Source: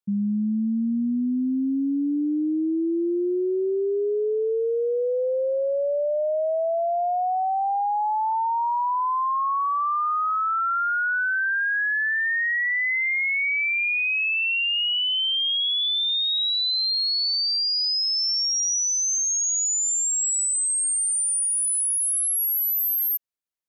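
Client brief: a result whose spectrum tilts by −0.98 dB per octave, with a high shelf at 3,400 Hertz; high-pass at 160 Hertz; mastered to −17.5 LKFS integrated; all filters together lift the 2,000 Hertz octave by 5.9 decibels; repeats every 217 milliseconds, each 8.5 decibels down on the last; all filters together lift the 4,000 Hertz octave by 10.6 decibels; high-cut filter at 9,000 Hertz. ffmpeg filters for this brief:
ffmpeg -i in.wav -af "highpass=160,lowpass=9000,equalizer=frequency=2000:width_type=o:gain=3,highshelf=frequency=3400:gain=6.5,equalizer=frequency=4000:width_type=o:gain=8,aecho=1:1:217|434|651|868:0.376|0.143|0.0543|0.0206,volume=-3dB" out.wav

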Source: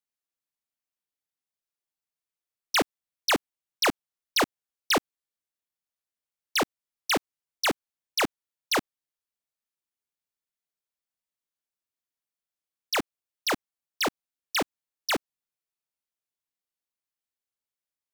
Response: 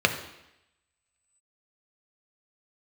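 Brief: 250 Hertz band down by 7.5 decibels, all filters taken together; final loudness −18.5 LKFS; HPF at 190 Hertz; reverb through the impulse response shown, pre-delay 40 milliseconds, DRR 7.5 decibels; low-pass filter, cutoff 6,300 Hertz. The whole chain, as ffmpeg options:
-filter_complex "[0:a]highpass=190,lowpass=6300,equalizer=frequency=250:width_type=o:gain=-9,asplit=2[link_01][link_02];[1:a]atrim=start_sample=2205,adelay=40[link_03];[link_02][link_03]afir=irnorm=-1:irlink=0,volume=-23.5dB[link_04];[link_01][link_04]amix=inputs=2:normalize=0,volume=11dB"

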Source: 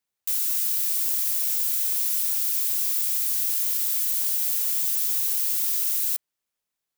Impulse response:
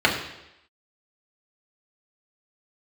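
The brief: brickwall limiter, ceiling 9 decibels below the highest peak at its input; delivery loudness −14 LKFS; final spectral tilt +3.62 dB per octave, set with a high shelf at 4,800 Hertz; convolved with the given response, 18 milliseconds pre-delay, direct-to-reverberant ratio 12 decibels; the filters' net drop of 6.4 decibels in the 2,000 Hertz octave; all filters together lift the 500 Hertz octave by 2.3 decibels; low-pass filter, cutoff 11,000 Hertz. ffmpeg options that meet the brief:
-filter_complex "[0:a]lowpass=11000,equalizer=frequency=500:width_type=o:gain=3.5,equalizer=frequency=2000:width_type=o:gain=-7,highshelf=frequency=4800:gain=-7,alimiter=level_in=9.5dB:limit=-24dB:level=0:latency=1,volume=-9.5dB,asplit=2[link_01][link_02];[1:a]atrim=start_sample=2205,adelay=18[link_03];[link_02][link_03]afir=irnorm=-1:irlink=0,volume=-31.5dB[link_04];[link_01][link_04]amix=inputs=2:normalize=0,volume=26dB"

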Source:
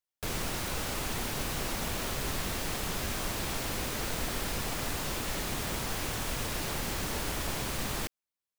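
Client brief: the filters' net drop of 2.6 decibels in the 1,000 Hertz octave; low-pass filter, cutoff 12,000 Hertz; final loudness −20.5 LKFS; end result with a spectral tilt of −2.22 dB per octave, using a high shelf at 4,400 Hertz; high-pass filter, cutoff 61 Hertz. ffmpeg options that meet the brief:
ffmpeg -i in.wav -af "highpass=61,lowpass=12000,equalizer=frequency=1000:width_type=o:gain=-4,highshelf=frequency=4400:gain=9,volume=10dB" out.wav

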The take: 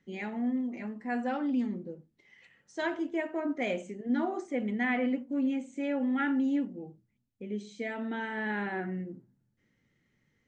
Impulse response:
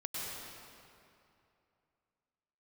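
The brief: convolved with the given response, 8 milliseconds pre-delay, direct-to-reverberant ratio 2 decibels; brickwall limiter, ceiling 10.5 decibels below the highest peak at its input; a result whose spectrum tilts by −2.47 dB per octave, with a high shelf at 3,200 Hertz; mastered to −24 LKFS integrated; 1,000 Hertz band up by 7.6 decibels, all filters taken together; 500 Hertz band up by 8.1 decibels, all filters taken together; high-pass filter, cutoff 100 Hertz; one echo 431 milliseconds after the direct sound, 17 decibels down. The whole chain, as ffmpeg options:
-filter_complex "[0:a]highpass=100,equalizer=frequency=500:width_type=o:gain=8,equalizer=frequency=1000:width_type=o:gain=7.5,highshelf=frequency=3200:gain=-5,alimiter=level_in=0.5dB:limit=-24dB:level=0:latency=1,volume=-0.5dB,aecho=1:1:431:0.141,asplit=2[link_01][link_02];[1:a]atrim=start_sample=2205,adelay=8[link_03];[link_02][link_03]afir=irnorm=-1:irlink=0,volume=-4.5dB[link_04];[link_01][link_04]amix=inputs=2:normalize=0,volume=7dB"

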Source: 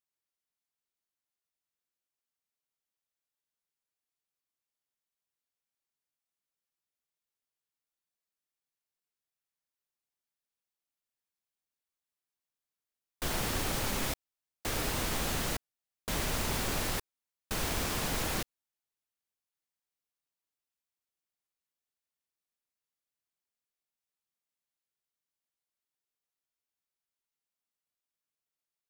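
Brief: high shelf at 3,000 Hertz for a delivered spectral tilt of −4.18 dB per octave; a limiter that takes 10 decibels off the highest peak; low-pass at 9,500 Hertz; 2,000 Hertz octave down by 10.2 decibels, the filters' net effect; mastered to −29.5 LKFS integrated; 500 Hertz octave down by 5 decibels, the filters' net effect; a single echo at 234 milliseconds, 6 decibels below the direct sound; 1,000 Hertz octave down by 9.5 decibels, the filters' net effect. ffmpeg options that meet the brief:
ffmpeg -i in.wav -af "lowpass=9500,equalizer=frequency=500:width_type=o:gain=-3.5,equalizer=frequency=1000:width_type=o:gain=-8.5,equalizer=frequency=2000:width_type=o:gain=-8,highshelf=frequency=3000:gain=-6,alimiter=level_in=9.5dB:limit=-24dB:level=0:latency=1,volume=-9.5dB,aecho=1:1:234:0.501,volume=15dB" out.wav

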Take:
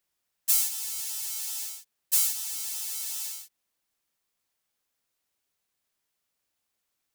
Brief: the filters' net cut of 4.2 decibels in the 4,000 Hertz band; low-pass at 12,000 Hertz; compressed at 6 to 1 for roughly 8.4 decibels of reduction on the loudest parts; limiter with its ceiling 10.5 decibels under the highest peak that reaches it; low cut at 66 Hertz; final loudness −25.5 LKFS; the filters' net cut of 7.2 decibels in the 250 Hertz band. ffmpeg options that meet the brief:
ffmpeg -i in.wav -af "highpass=66,lowpass=12000,equalizer=frequency=250:width_type=o:gain=-8.5,equalizer=frequency=4000:width_type=o:gain=-5.5,acompressor=threshold=-31dB:ratio=6,volume=12dB,alimiter=limit=-13dB:level=0:latency=1" out.wav

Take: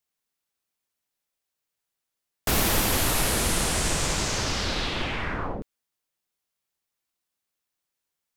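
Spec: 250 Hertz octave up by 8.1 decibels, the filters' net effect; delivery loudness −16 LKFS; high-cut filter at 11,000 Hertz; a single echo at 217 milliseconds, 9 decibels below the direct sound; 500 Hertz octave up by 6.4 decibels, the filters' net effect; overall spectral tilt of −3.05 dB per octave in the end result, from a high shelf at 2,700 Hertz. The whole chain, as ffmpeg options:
ffmpeg -i in.wav -af "lowpass=11000,equalizer=frequency=250:width_type=o:gain=9,equalizer=frequency=500:width_type=o:gain=5,highshelf=frequency=2700:gain=8,aecho=1:1:217:0.355,volume=3.5dB" out.wav

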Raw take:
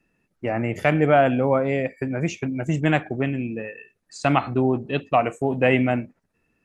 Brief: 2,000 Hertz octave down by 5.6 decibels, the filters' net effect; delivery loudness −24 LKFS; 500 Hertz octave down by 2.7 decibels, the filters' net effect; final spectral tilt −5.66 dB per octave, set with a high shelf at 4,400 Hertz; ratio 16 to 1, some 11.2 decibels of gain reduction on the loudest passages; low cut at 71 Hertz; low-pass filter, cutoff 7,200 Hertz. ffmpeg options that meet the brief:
ffmpeg -i in.wav -af "highpass=71,lowpass=7200,equalizer=frequency=500:width_type=o:gain=-3,equalizer=frequency=2000:width_type=o:gain=-8,highshelf=frequency=4400:gain=3.5,acompressor=threshold=-26dB:ratio=16,volume=8.5dB" out.wav

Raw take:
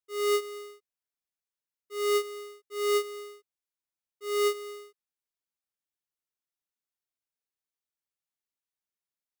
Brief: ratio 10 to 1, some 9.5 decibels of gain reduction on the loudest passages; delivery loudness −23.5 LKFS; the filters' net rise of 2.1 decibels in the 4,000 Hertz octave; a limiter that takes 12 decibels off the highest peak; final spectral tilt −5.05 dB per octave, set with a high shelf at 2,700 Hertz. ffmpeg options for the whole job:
ffmpeg -i in.wav -af "highshelf=frequency=2700:gain=-6.5,equalizer=frequency=4000:width_type=o:gain=8.5,acompressor=threshold=-34dB:ratio=10,volume=23.5dB,alimiter=limit=-19dB:level=0:latency=1" out.wav

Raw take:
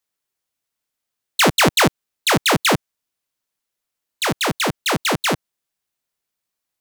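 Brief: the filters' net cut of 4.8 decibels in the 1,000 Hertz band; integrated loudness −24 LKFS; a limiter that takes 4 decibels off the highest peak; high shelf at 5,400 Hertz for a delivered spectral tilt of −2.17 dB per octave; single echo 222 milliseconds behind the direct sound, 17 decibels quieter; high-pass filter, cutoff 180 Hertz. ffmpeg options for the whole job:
ffmpeg -i in.wav -af "highpass=180,equalizer=frequency=1000:width_type=o:gain=-6.5,highshelf=frequency=5400:gain=5.5,alimiter=limit=-3.5dB:level=0:latency=1,aecho=1:1:222:0.141,volume=-5.5dB" out.wav

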